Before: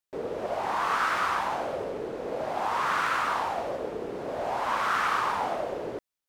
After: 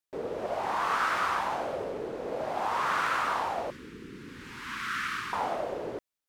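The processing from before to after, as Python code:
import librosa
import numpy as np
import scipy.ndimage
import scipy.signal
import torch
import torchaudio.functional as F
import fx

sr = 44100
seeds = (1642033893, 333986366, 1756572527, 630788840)

y = fx.cheby1_bandstop(x, sr, low_hz=260.0, high_hz=1700.0, order=2, at=(3.7, 5.33))
y = F.gain(torch.from_numpy(y), -1.5).numpy()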